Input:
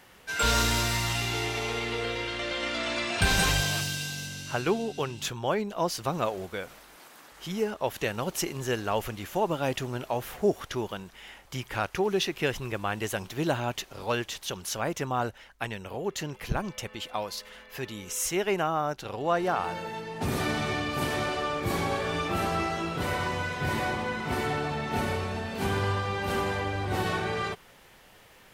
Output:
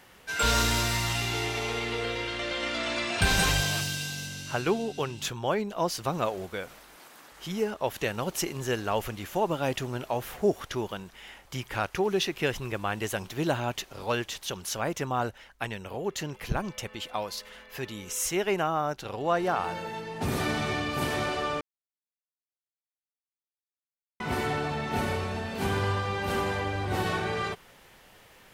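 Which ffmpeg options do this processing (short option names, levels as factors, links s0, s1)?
-filter_complex "[0:a]asplit=3[s0][s1][s2];[s0]atrim=end=21.61,asetpts=PTS-STARTPTS,afade=t=out:st=21.606:d=0.004:c=hsin[s3];[s1]atrim=start=21.61:end=24.2,asetpts=PTS-STARTPTS,volume=0[s4];[s2]atrim=start=24.2,asetpts=PTS-STARTPTS,afade=t=in:d=0.004:c=hsin[s5];[s3][s4][s5]concat=n=3:v=0:a=1"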